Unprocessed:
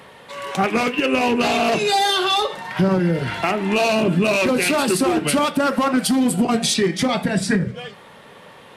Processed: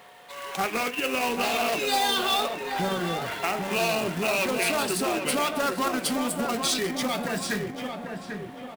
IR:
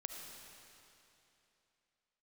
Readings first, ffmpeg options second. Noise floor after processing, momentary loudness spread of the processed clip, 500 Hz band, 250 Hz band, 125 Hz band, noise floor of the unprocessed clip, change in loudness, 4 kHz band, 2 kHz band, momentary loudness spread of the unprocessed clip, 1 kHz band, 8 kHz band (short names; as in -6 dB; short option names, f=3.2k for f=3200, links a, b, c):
-41 dBFS, 11 LU, -7.5 dB, -11.5 dB, -13.0 dB, -44 dBFS, -7.5 dB, -5.0 dB, -5.5 dB, 5 LU, -6.0 dB, -4.5 dB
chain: -filter_complex "[0:a]lowshelf=f=320:g=-11,acrusher=bits=2:mode=log:mix=0:aa=0.000001,aeval=exprs='val(0)+0.00447*sin(2*PI*720*n/s)':c=same,asplit=2[a][b];[b]adelay=793,lowpass=f=1.6k:p=1,volume=-5dB,asplit=2[c][d];[d]adelay=793,lowpass=f=1.6k:p=1,volume=0.51,asplit=2[e][f];[f]adelay=793,lowpass=f=1.6k:p=1,volume=0.51,asplit=2[g][h];[h]adelay=793,lowpass=f=1.6k:p=1,volume=0.51,asplit=2[i][j];[j]adelay=793,lowpass=f=1.6k:p=1,volume=0.51,asplit=2[k][l];[l]adelay=793,lowpass=f=1.6k:p=1,volume=0.51[m];[c][e][g][i][k][m]amix=inputs=6:normalize=0[n];[a][n]amix=inputs=2:normalize=0,volume=-6dB"